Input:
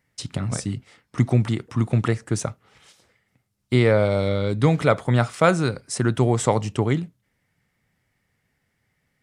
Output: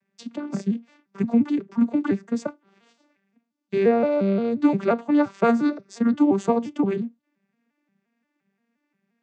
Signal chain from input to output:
vocoder with an arpeggio as carrier minor triad, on G3, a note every 175 ms

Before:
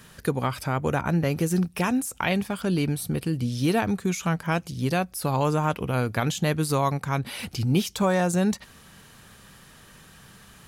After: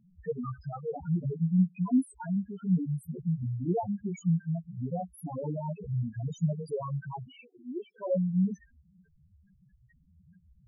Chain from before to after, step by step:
multi-voice chorus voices 4, 0.96 Hz, delay 14 ms, depth 3 ms
0:07.41–0:08.14: Chebyshev band-pass filter 420–2,000 Hz, order 2
spectral peaks only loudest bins 2

